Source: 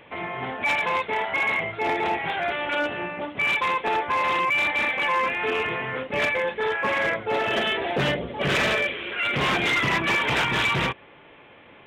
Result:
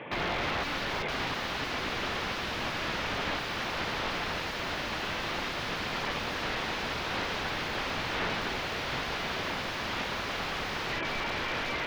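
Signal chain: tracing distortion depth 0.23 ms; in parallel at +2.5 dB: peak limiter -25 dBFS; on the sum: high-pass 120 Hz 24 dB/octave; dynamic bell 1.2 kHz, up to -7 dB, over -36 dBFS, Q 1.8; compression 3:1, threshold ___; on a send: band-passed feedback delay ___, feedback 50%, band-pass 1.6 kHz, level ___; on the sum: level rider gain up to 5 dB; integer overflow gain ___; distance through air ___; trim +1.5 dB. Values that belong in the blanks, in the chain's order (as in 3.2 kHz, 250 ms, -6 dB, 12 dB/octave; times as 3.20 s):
-24 dBFS, 1008 ms, -5 dB, 23.5 dB, 280 m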